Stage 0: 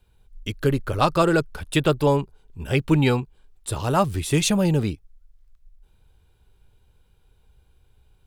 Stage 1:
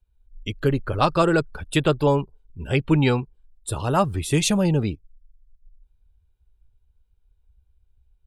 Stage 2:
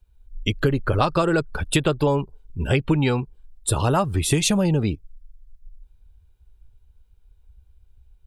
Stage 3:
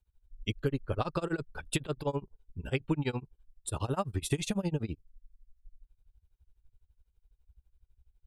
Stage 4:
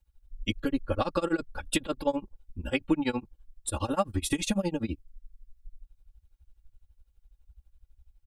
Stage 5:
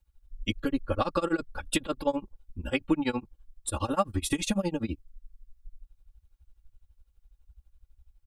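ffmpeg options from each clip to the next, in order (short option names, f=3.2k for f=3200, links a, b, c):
-af "afftdn=nr=18:nf=-43"
-af "acompressor=threshold=-24dB:ratio=10,volume=8dB"
-af "tremolo=f=12:d=0.96,volume=-8.5dB"
-af "aecho=1:1:3.6:0.97,volume=2dB"
-af "equalizer=f=1.2k:t=o:w=0.32:g=3.5"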